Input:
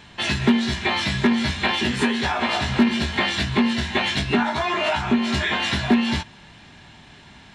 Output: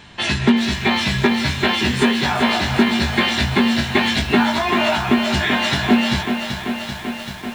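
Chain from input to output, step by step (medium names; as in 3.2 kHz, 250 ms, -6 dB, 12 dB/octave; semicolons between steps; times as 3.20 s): bit-crushed delay 387 ms, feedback 80%, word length 7-bit, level -8 dB; trim +3 dB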